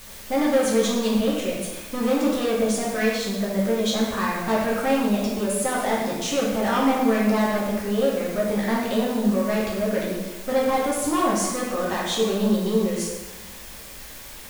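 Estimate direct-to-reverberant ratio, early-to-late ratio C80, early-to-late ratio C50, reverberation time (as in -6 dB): -5.0 dB, 3.0 dB, 0.5 dB, 1.2 s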